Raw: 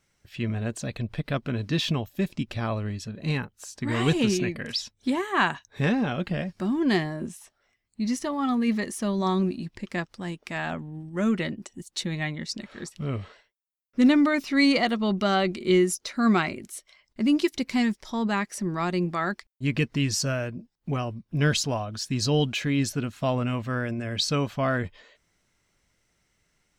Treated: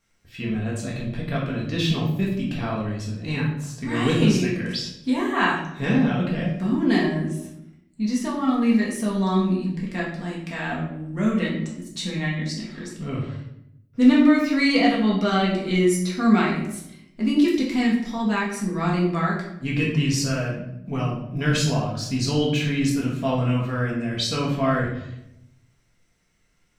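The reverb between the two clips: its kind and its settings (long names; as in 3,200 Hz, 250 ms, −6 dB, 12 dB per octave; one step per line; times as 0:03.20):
rectangular room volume 200 cubic metres, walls mixed, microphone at 1.7 metres
level −3.5 dB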